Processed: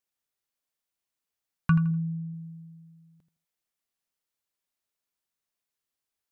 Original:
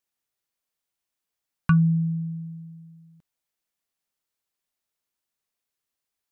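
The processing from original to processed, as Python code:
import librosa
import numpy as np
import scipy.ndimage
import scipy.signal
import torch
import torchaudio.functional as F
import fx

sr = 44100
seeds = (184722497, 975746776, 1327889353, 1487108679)

y = fx.lowpass(x, sr, hz=1600.0, slope=12, at=(1.91, 2.34))
y = fx.echo_feedback(y, sr, ms=82, feedback_pct=25, wet_db=-11.5)
y = y * 10.0 ** (-3.0 / 20.0)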